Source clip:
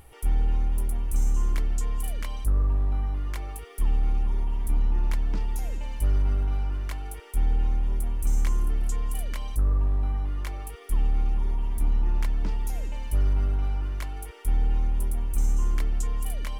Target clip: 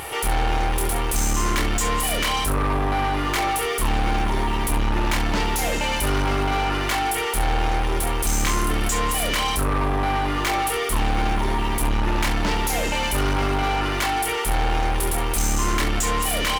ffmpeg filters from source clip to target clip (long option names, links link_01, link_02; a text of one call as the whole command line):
ffmpeg -i in.wav -filter_complex "[0:a]aecho=1:1:28|68:0.531|0.211,asplit=2[link_01][link_02];[link_02]highpass=frequency=720:poles=1,volume=35dB,asoftclip=type=tanh:threshold=-11dB[link_03];[link_01][link_03]amix=inputs=2:normalize=0,lowpass=frequency=7300:poles=1,volume=-6dB,volume=-2dB" out.wav